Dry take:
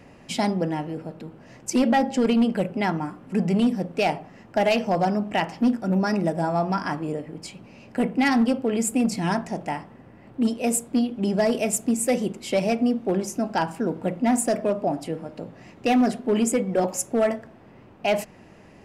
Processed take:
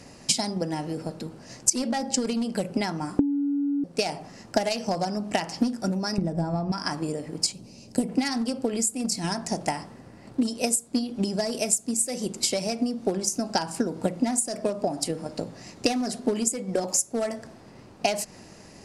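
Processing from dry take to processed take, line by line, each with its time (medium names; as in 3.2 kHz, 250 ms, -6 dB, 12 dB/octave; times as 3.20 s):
3.19–3.84 s: bleep 284 Hz -8.5 dBFS
6.18–6.72 s: RIAA curve playback
7.52–8.09 s: peaking EQ 1.5 kHz -14.5 dB 2 oct
whole clip: high-order bell 6.7 kHz +14 dB; compression, threshold -26 dBFS; transient shaper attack +7 dB, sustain +2 dB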